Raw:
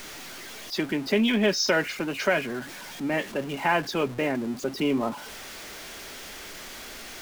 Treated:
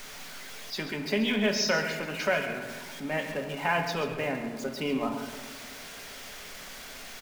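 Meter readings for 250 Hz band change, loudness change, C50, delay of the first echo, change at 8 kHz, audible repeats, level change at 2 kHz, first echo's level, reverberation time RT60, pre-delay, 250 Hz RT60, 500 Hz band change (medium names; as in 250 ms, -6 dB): -5.0 dB, -4.0 dB, 6.5 dB, 135 ms, -2.5 dB, 1, -2.0 dB, -12.0 dB, 1.6 s, 3 ms, 2.4 s, -3.5 dB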